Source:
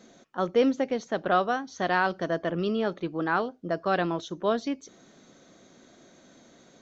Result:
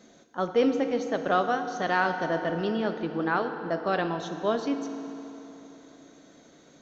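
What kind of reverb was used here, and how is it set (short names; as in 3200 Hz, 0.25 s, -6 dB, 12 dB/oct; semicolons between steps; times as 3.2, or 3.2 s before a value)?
FDN reverb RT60 3.4 s, high-frequency decay 0.75×, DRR 6.5 dB; gain -1 dB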